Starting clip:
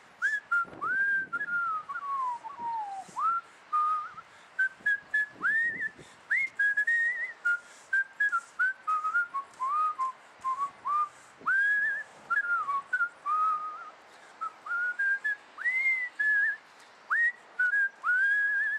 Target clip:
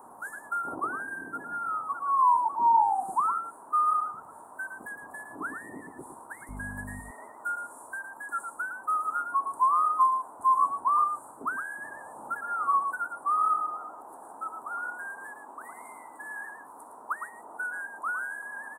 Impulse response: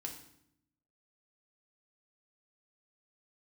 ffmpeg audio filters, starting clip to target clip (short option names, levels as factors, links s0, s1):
-filter_complex "[0:a]asettb=1/sr,asplit=3[s0][s1][s2];[s0]atrim=end=6.494[s3];[s1]atrim=start=6.49:end=7,asetpts=PTS-STARTPTS,afade=t=in:d=0.004:c=qsin,afade=t=out:st=0.506:d=0.004:c=qsin,aeval=exprs='val(0)+0.0112*(sin(2*PI*50*n/s)+sin(2*PI*2*50*n/s)/2+sin(2*PI*3*50*n/s)/3+sin(2*PI*4*50*n/s)/4+sin(2*PI*5*50*n/s)/5)':c=same[s4];[s2]atrim=start=6.996[s5];[s3][s4]acrossfade=d=0.004:c1=hsin:c2=qsin[s6];[s6][s5]acrossfade=d=0.004:c1=qsin:c2=hsin,firequalizer=gain_entry='entry(180,0);entry(260,10);entry(520,4);entry(940,13);entry(2100,-30);entry(4700,-29);entry(9400,15)':delay=0.05:min_phase=1,aecho=1:1:111:0.447"